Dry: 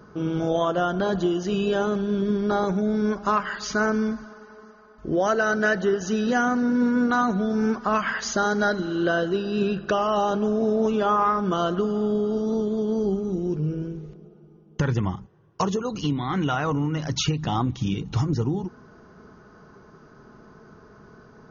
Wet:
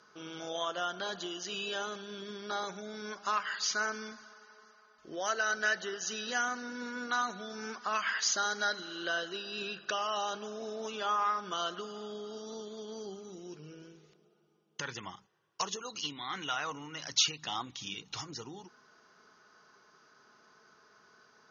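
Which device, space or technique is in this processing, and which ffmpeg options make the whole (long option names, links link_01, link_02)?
piezo pickup straight into a mixer: -af "lowpass=5300,aderivative,volume=7dB"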